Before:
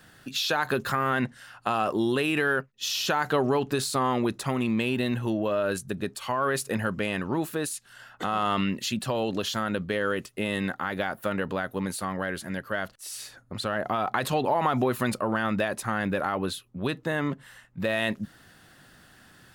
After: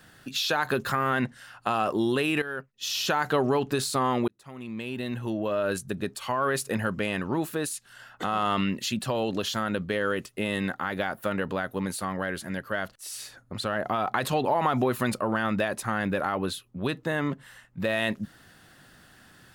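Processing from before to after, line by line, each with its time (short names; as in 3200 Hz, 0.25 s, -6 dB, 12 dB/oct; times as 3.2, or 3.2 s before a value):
2.42–2.99 fade in, from -13.5 dB
4.28–5.71 fade in linear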